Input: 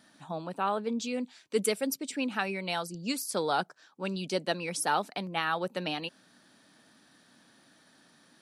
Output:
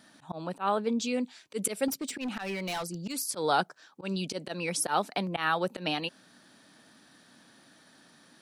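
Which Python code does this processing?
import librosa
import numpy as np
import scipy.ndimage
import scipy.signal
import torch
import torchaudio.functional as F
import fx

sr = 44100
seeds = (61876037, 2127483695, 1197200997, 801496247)

y = fx.auto_swell(x, sr, attack_ms=105.0)
y = fx.clip_hard(y, sr, threshold_db=-33.0, at=(1.88, 3.13))
y = fx.band_squash(y, sr, depth_pct=40, at=(5.16, 5.77))
y = F.gain(torch.from_numpy(y), 3.0).numpy()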